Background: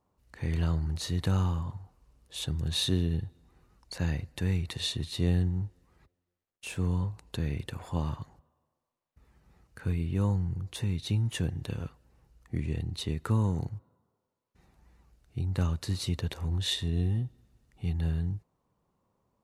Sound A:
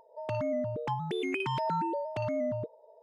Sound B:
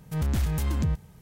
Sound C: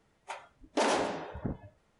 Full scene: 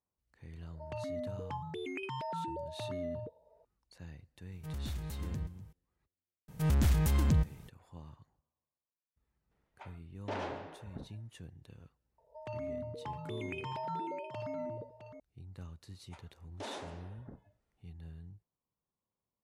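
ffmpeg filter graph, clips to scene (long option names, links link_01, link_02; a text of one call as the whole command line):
ffmpeg -i bed.wav -i cue0.wav -i cue1.wav -i cue2.wav -filter_complex "[1:a]asplit=2[link_01][link_02];[2:a]asplit=2[link_03][link_04];[3:a]asplit=2[link_05][link_06];[0:a]volume=-19dB[link_07];[link_03]aecho=1:1:247:0.126[link_08];[link_05]lowpass=3300[link_09];[link_02]aecho=1:1:87|196|661:0.141|0.106|0.299[link_10];[link_01]atrim=end=3.02,asetpts=PTS-STARTPTS,volume=-8dB,afade=type=in:duration=0.004:curve=hsin,afade=type=out:start_time=3.016:duration=0.004:curve=hsin,adelay=630[link_11];[link_08]atrim=end=1.21,asetpts=PTS-STARTPTS,volume=-13.5dB,afade=type=in:duration=0.004:curve=hsin,afade=type=out:start_time=1.206:duration=0.004:curve=hsin,adelay=4520[link_12];[link_04]atrim=end=1.21,asetpts=PTS-STARTPTS,volume=-1.5dB,afade=type=in:duration=0.004:curve=hsin,afade=type=out:start_time=1.206:duration=0.004:curve=hsin,adelay=6480[link_13];[link_09]atrim=end=1.99,asetpts=PTS-STARTPTS,volume=-10.5dB,afade=type=in:duration=0.004:curve=hsin,afade=type=out:start_time=1.986:duration=0.004:curve=hsin,adelay=9510[link_14];[link_10]atrim=end=3.02,asetpts=PTS-STARTPTS,volume=-9dB,afade=type=in:duration=0.004:curve=hsin,afade=type=out:start_time=3.016:duration=0.004:curve=hsin,adelay=12180[link_15];[link_06]atrim=end=1.99,asetpts=PTS-STARTPTS,volume=-15.5dB,afade=type=in:duration=0.004:curve=hsin,afade=type=out:start_time=1.986:duration=0.004:curve=hsin,adelay=15830[link_16];[link_07][link_11][link_12][link_13][link_14][link_15][link_16]amix=inputs=7:normalize=0" out.wav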